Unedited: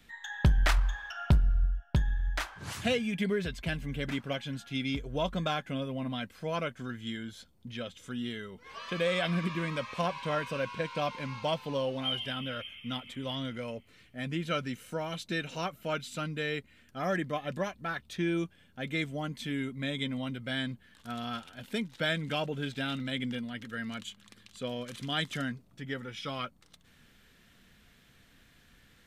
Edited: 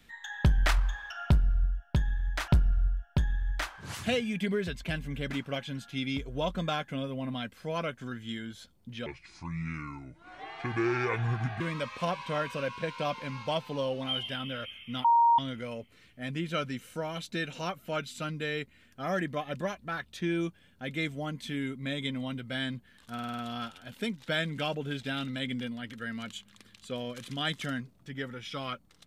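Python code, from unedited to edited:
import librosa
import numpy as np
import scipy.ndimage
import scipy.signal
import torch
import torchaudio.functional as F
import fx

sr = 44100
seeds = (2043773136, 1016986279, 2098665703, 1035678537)

y = fx.edit(x, sr, fx.repeat(start_s=1.26, length_s=1.22, count=2),
    fx.speed_span(start_s=7.84, length_s=1.73, speed=0.68),
    fx.bleep(start_s=13.01, length_s=0.34, hz=935.0, db=-18.5),
    fx.stutter(start_s=21.1, slice_s=0.05, count=6), tone=tone)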